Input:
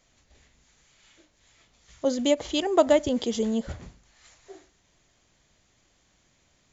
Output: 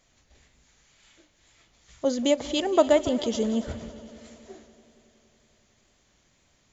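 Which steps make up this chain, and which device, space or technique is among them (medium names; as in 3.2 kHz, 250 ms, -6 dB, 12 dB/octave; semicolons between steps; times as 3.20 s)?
multi-head tape echo (multi-head delay 93 ms, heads second and third, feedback 62%, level -18 dB; wow and flutter 20 cents)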